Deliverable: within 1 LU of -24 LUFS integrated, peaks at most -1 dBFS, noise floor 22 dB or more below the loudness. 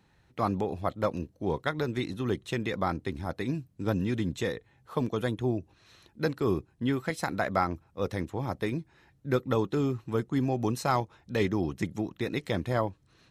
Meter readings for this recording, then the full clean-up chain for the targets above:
loudness -31.0 LUFS; peak level -11.0 dBFS; loudness target -24.0 LUFS
-> trim +7 dB

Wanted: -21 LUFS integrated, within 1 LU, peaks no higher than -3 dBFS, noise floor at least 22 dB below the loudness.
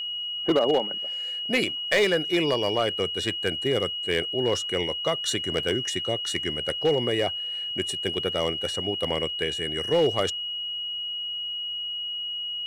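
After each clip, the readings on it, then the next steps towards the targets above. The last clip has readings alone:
clipped samples 0.5%; clipping level -15.0 dBFS; steady tone 2.9 kHz; tone level -29 dBFS; loudness -26.0 LUFS; peak level -15.0 dBFS; loudness target -21.0 LUFS
-> clip repair -15 dBFS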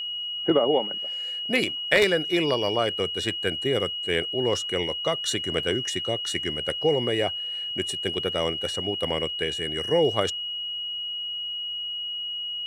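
clipped samples 0.0%; steady tone 2.9 kHz; tone level -29 dBFS
-> band-stop 2.9 kHz, Q 30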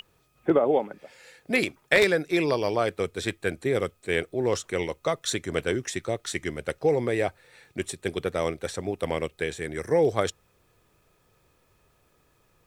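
steady tone not found; loudness -27.0 LUFS; peak level -5.5 dBFS; loudness target -21.0 LUFS
-> trim +6 dB; peak limiter -3 dBFS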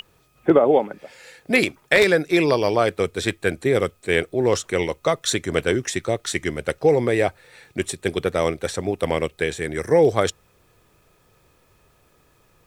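loudness -21.5 LUFS; peak level -3.0 dBFS; noise floor -60 dBFS

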